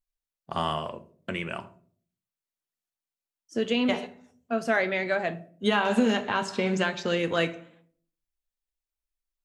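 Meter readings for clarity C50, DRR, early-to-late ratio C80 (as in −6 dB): 17.5 dB, 9.0 dB, 22.0 dB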